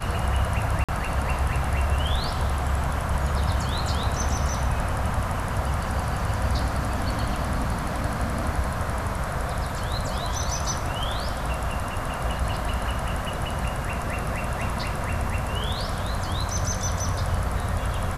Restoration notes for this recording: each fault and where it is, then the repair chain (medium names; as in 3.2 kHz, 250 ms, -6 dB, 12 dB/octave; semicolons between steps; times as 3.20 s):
0.84–0.89 s: dropout 46 ms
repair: interpolate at 0.84 s, 46 ms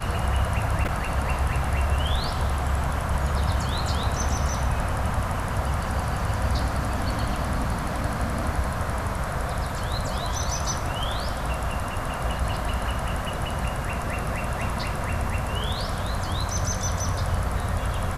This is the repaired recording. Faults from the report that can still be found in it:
nothing left